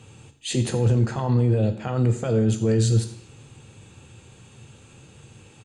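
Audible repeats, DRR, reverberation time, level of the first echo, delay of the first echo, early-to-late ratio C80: 1, 7.0 dB, 0.70 s, -18.5 dB, 88 ms, 13.0 dB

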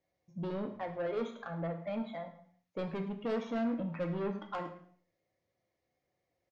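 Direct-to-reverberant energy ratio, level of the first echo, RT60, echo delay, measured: 3.5 dB, -16.5 dB, 0.55 s, 0.106 s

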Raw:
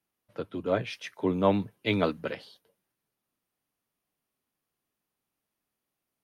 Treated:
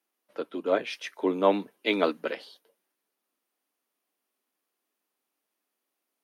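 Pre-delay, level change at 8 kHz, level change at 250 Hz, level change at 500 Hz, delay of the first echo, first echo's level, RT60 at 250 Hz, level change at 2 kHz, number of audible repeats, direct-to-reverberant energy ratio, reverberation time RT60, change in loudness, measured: none, n/a, -1.0 dB, +2.5 dB, none, none, none, +2.5 dB, none, none, none, +1.5 dB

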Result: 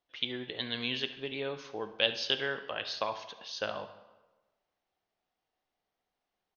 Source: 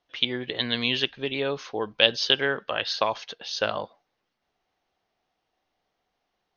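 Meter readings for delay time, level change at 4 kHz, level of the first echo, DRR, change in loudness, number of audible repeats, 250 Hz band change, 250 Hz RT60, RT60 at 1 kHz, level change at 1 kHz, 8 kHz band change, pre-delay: 70 ms, -8.5 dB, -17.0 dB, 9.0 dB, -8.5 dB, 1, -8.5 dB, 1.2 s, 1.2 s, -8.5 dB, n/a, 16 ms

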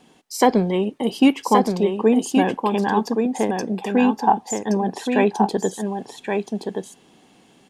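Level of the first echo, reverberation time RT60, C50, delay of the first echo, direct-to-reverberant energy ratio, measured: -5.0 dB, none, none, 1.123 s, none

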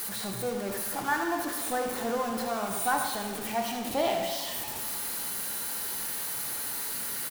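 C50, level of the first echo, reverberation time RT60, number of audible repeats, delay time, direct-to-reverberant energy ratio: 3.5 dB, -10.0 dB, 1.5 s, 1, 75 ms, 1.5 dB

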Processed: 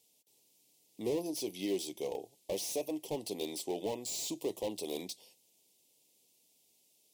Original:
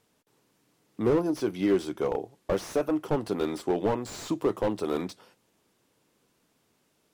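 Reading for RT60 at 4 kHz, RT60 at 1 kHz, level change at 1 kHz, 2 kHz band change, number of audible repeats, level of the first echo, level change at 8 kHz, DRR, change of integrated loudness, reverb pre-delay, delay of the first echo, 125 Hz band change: none, none, -12.5 dB, -11.0 dB, none, none, +5.0 dB, none, -9.0 dB, none, none, -15.0 dB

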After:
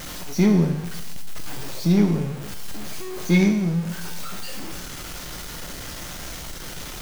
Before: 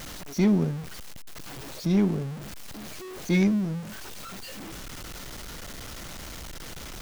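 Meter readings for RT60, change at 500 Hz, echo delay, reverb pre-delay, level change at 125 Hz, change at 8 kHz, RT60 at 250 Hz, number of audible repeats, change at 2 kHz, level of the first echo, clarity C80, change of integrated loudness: 0.95 s, +4.5 dB, none, 6 ms, +6.0 dB, +6.5 dB, 0.95 s, none, +5.5 dB, none, 10.0 dB, +4.5 dB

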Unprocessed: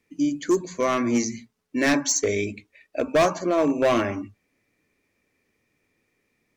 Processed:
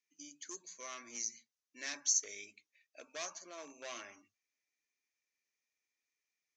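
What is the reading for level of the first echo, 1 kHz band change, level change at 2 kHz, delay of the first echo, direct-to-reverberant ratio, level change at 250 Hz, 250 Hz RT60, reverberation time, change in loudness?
none, -25.0 dB, -19.0 dB, none, none, -35.0 dB, none, none, -16.0 dB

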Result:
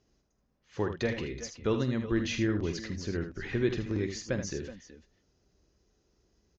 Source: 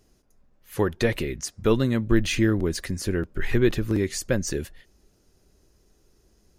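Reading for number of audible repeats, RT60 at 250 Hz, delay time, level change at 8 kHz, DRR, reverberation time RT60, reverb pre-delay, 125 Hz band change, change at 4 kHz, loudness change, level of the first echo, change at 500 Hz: 3, none, 47 ms, -9.5 dB, none, none, none, -7.5 dB, -7.0 dB, -7.5 dB, -11.0 dB, -7.5 dB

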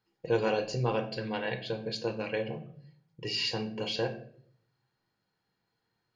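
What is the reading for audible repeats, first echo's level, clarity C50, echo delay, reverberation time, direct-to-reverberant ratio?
none, none, 12.0 dB, none, 0.60 s, 5.5 dB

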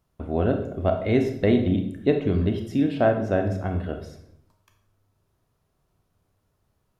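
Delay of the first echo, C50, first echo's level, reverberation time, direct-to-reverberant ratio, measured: none, 8.0 dB, none, 0.70 s, 5.0 dB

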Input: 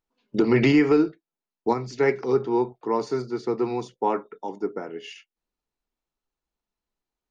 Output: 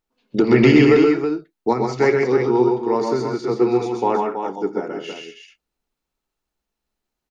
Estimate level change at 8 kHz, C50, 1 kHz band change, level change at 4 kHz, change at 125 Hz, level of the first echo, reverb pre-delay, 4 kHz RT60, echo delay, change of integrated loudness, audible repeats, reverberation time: n/a, none, +5.5 dB, +6.5 dB, +7.0 dB, -17.0 dB, none, none, 83 ms, +6.0 dB, 4, none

